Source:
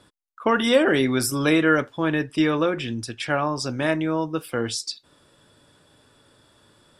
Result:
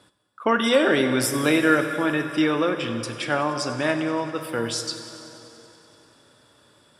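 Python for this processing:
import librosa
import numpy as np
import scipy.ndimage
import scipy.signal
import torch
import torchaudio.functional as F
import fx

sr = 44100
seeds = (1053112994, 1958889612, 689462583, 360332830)

p1 = scipy.signal.sosfilt(scipy.signal.butter(2, 57.0, 'highpass', fs=sr, output='sos'), x)
p2 = fx.low_shelf(p1, sr, hz=260.0, db=-4.0)
p3 = p2 + fx.echo_thinned(p2, sr, ms=95, feedback_pct=82, hz=170.0, wet_db=-18, dry=0)
y = fx.rev_plate(p3, sr, seeds[0], rt60_s=3.3, hf_ratio=0.7, predelay_ms=0, drr_db=8.0)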